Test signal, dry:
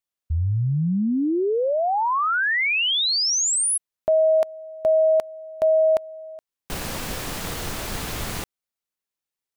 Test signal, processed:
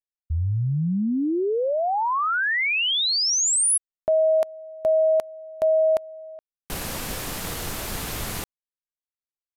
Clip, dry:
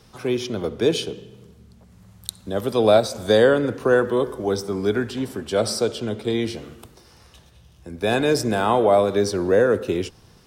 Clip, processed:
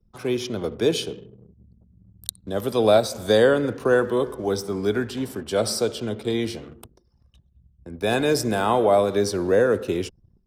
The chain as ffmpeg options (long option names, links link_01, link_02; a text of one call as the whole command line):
ffmpeg -i in.wav -af "aresample=32000,aresample=44100,highshelf=frequency=12000:gain=9.5,anlmdn=0.1,volume=-1.5dB" out.wav